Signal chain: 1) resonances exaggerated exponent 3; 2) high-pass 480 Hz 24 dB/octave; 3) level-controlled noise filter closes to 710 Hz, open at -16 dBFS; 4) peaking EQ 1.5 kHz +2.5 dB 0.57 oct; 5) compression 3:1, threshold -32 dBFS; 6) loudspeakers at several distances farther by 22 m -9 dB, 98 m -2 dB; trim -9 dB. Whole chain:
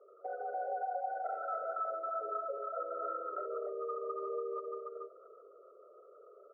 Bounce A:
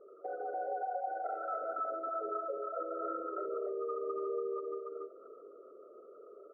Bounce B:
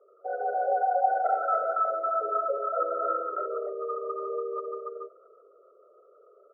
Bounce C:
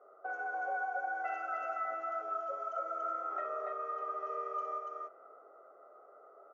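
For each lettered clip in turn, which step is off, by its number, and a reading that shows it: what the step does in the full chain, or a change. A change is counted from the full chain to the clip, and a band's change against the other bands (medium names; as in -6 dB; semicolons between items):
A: 2, 250 Hz band +8.0 dB; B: 5, mean gain reduction 8.0 dB; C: 1, 2 kHz band +16.5 dB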